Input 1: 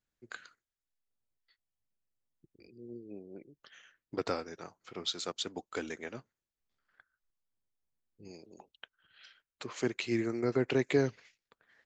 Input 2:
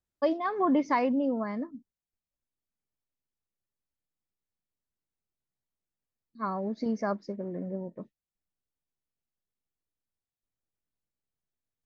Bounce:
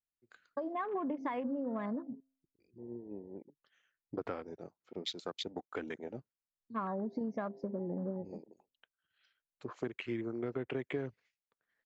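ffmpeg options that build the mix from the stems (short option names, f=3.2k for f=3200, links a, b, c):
-filter_complex "[0:a]highshelf=f=5.3k:g=-7.5,volume=1dB,asplit=2[a][b];[1:a]bandreject=f=133:t=h:w=4,bandreject=f=266:t=h:w=4,bandreject=f=399:t=h:w=4,bandreject=f=532:t=h:w=4,bandreject=f=665:t=h:w=4,acompressor=threshold=-27dB:ratio=6,adelay=350,volume=3dB[c];[b]apad=whole_len=538111[d];[c][d]sidechaincompress=threshold=-55dB:ratio=3:attack=32:release=417[e];[a][e]amix=inputs=2:normalize=0,afwtdn=0.00794,acompressor=threshold=-35dB:ratio=4"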